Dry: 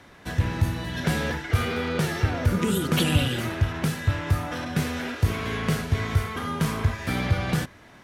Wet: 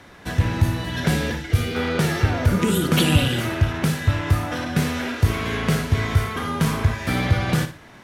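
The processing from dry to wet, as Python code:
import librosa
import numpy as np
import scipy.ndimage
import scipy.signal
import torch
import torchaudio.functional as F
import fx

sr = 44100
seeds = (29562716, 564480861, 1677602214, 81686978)

y = fx.peak_eq(x, sr, hz=1100.0, db=fx.line((1.05, -1.5), (1.74, -13.5)), octaves=1.8, at=(1.05, 1.74), fade=0.02)
y = fx.room_flutter(y, sr, wall_m=9.9, rt60_s=0.32)
y = y * librosa.db_to_amplitude(4.0)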